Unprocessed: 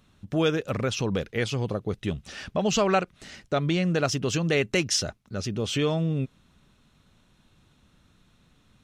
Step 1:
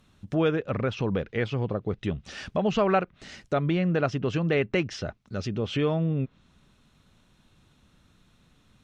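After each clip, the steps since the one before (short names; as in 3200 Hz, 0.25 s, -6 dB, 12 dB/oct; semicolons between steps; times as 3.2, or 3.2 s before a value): treble ducked by the level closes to 2300 Hz, closed at -24.5 dBFS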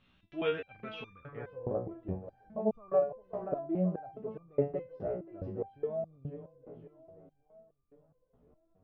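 split-band echo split 330 Hz, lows 0.395 s, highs 0.53 s, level -11.5 dB; low-pass sweep 2900 Hz -> 690 Hz, 0.95–1.59; stepped resonator 4.8 Hz 61–1200 Hz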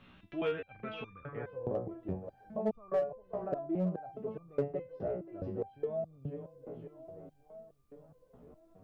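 in parallel at -4.5 dB: hard clip -25.5 dBFS, distortion -13 dB; on the sum: three-band squash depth 40%; gain -4.5 dB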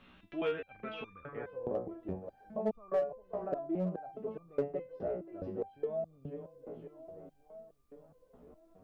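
bell 120 Hz -9.5 dB 0.72 oct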